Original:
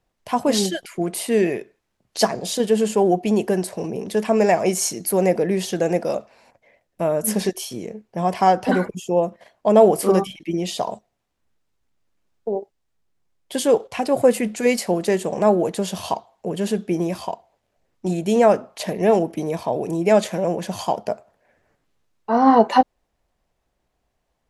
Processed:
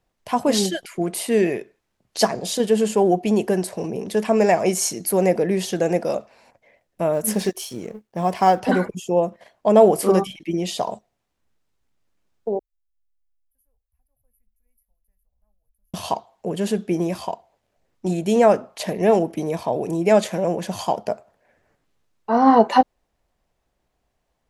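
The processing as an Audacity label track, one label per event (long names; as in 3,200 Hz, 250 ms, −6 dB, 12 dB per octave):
7.130000	8.600000	mu-law and A-law mismatch coded by A
12.590000	15.940000	inverse Chebyshev band-stop filter 150–8,200 Hz, stop band 60 dB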